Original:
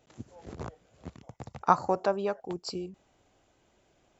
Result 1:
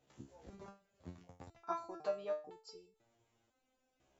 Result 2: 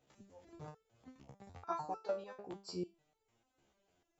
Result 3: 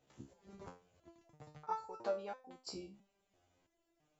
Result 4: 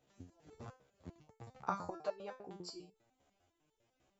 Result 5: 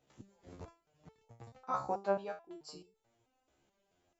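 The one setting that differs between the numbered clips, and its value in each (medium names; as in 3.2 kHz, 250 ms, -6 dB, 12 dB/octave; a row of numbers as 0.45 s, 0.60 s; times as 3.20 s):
resonator arpeggio, rate: 2 Hz, 6.7 Hz, 3 Hz, 10 Hz, 4.6 Hz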